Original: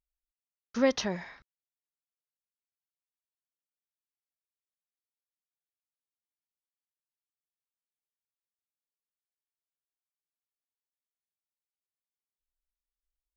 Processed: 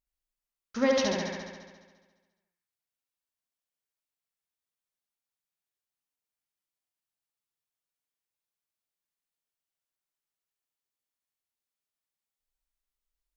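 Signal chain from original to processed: hum notches 60/120/180/240/300/360/420/480/540 Hz; flutter echo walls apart 11.9 m, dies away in 1.4 s

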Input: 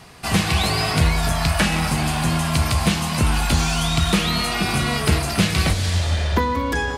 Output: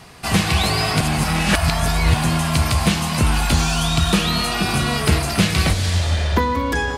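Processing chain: 1.01–2.14 s: reverse; 3.62–4.99 s: band-stop 2.1 kHz, Q 8.8; trim +1.5 dB

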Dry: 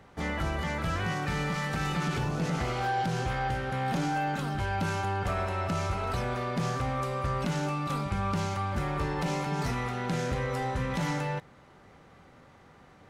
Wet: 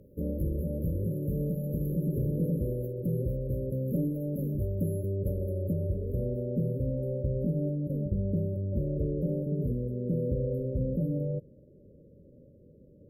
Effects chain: brick-wall FIR band-stop 610–11000 Hz; treble shelf 8 kHz +9 dB, from 5.73 s -5 dB, from 6.93 s -12 dB; trim +2 dB

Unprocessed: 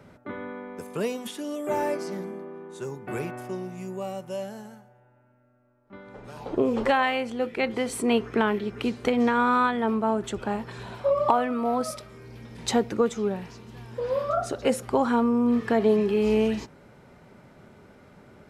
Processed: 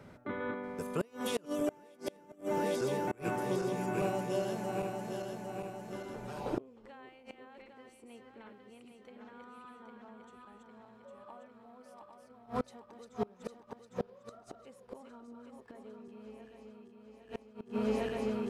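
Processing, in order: backward echo that repeats 402 ms, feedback 74%, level -3 dB; inverted gate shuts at -18 dBFS, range -29 dB; trim -2.5 dB

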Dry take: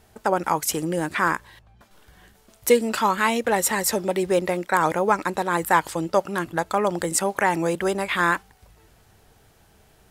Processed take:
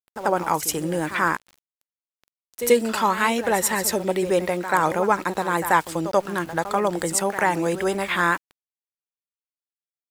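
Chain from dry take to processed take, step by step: reverse echo 86 ms -12 dB; small samples zeroed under -40 dBFS

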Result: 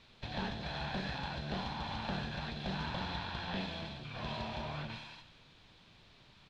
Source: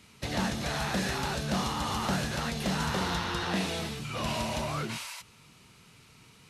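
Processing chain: comb filter that takes the minimum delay 1.2 ms; treble shelf 2.6 kHz -12 dB; added noise pink -58 dBFS; resonant low-pass 3.8 kHz, resonance Q 3.1; on a send: feedback delay 94 ms, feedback 59%, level -13.5 dB; on the sum: trim -6.5 dB

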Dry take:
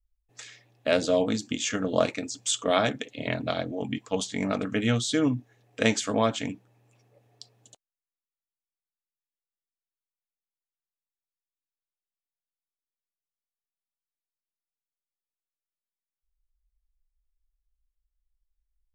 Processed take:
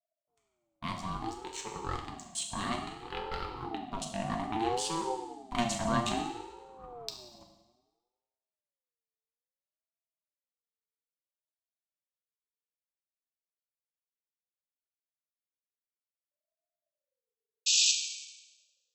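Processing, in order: local Wiener filter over 41 samples; Doppler pass-by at 6.99 s, 16 m/s, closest 3.6 m; treble shelf 7.2 kHz +6 dB; in parallel at +2 dB: compressor with a negative ratio -49 dBFS, ratio -0.5; on the sum: waveshaping leveller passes 1; painted sound noise, 17.66–17.92 s, 2.9–7.4 kHz -28 dBFS; on a send at -2 dB: reverberation RT60 1.1 s, pre-delay 4 ms; on the sum: ring modulator with a swept carrier 550 Hz, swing 20%, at 0.6 Hz; trim +4.5 dB

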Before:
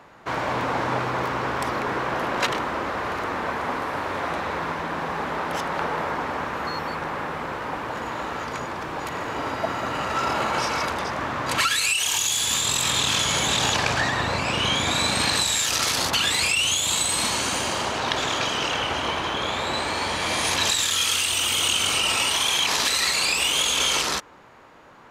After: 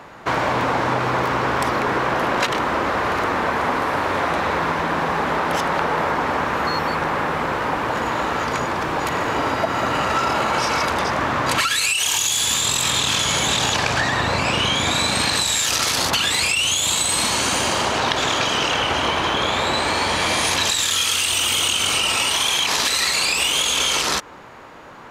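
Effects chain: compression, threshold -25 dBFS, peak gain reduction 8 dB; trim +8.5 dB

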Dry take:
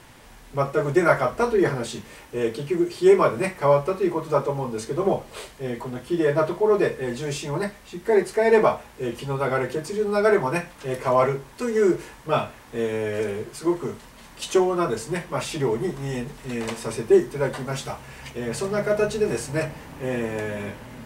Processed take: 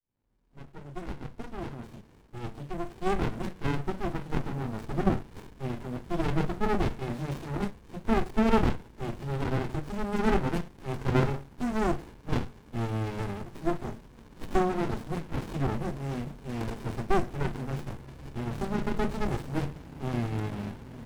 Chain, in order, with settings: fade-in on the opening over 5.02 s; sliding maximum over 65 samples; trim -1.5 dB

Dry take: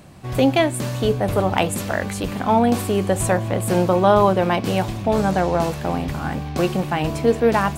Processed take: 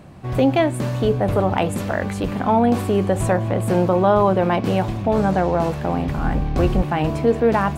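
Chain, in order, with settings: 6.17–6.82 s: octave divider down 2 oct, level +3 dB; treble shelf 3.1 kHz -11 dB; in parallel at 0 dB: peak limiter -13.5 dBFS, peak gain reduction 10 dB; on the sum: trim -3.5 dB

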